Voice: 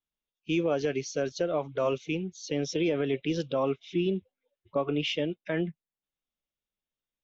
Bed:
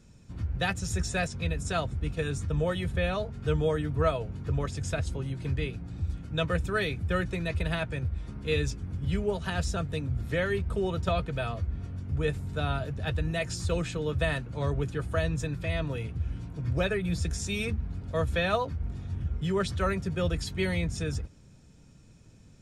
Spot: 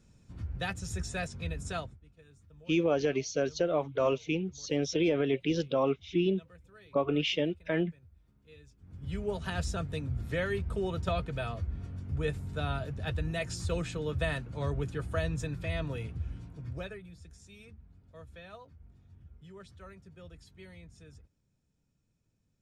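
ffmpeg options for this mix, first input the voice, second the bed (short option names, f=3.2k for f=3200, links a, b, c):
-filter_complex "[0:a]adelay=2200,volume=0dB[a];[1:a]volume=18dB,afade=t=out:st=1.75:d=0.23:silence=0.0841395,afade=t=in:st=8.77:d=0.6:silence=0.0630957,afade=t=out:st=16.04:d=1.08:silence=0.11885[b];[a][b]amix=inputs=2:normalize=0"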